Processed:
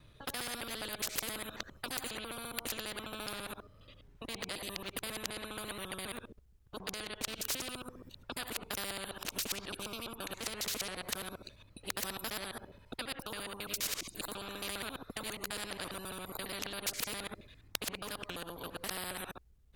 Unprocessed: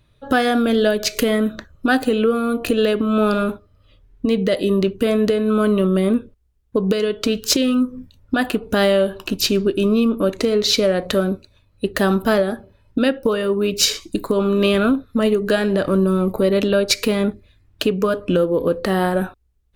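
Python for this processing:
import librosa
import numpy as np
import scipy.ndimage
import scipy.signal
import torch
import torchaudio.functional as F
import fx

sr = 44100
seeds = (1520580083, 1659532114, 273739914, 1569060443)

y = fx.local_reverse(x, sr, ms=68.0)
y = fx.spectral_comp(y, sr, ratio=4.0)
y = F.gain(torch.from_numpy(y), -6.5).numpy()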